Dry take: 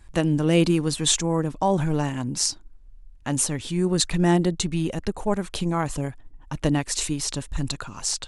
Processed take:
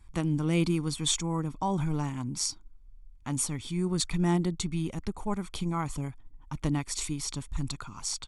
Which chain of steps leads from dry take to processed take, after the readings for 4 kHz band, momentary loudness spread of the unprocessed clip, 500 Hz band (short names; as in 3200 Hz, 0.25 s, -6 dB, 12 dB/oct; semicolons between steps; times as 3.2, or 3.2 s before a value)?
-7.0 dB, 10 LU, -10.5 dB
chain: comb 0.9 ms, depth 53%; gain -8 dB